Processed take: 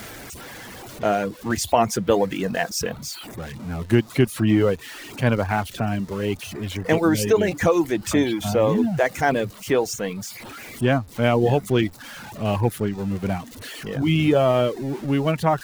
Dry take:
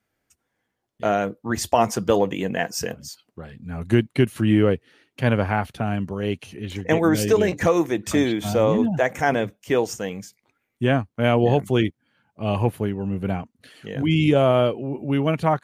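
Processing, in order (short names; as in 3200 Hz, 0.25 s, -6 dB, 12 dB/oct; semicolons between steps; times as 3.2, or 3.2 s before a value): zero-crossing step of -31 dBFS; reverb removal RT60 0.53 s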